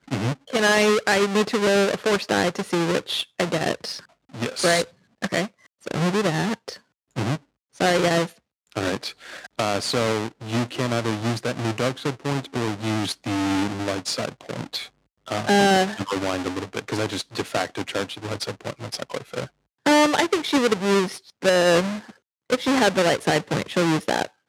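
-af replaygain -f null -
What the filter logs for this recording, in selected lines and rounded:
track_gain = +2.1 dB
track_peak = 0.378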